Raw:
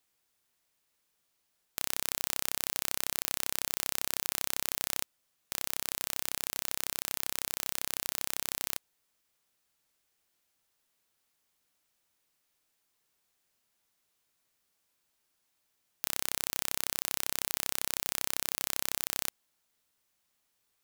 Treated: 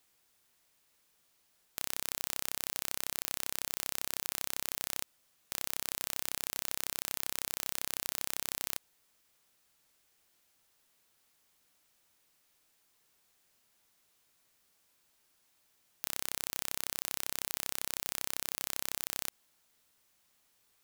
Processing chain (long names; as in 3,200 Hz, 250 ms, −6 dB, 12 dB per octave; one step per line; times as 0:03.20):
brickwall limiter −12.5 dBFS, peak gain reduction 9 dB
level +5.5 dB